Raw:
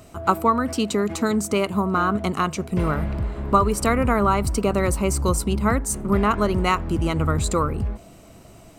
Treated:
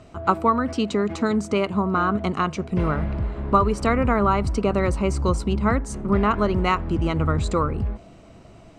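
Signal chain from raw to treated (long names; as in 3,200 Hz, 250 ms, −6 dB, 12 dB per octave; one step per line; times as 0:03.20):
high-frequency loss of the air 110 metres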